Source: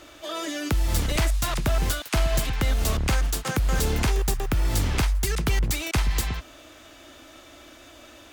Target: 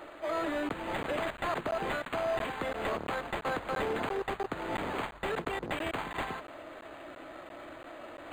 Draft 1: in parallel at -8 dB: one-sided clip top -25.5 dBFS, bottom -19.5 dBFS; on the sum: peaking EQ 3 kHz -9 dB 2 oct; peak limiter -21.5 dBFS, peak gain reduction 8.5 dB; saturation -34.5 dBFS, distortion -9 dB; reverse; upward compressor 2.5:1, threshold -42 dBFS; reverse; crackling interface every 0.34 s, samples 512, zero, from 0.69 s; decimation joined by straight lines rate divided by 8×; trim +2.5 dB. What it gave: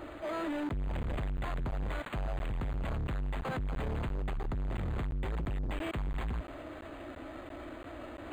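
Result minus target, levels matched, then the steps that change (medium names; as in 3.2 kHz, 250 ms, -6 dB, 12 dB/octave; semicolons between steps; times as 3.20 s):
saturation: distortion +10 dB; 500 Hz band -4.5 dB
add after the parallel path: high-pass 430 Hz 12 dB/octave; change: saturation -25.5 dBFS, distortion -19 dB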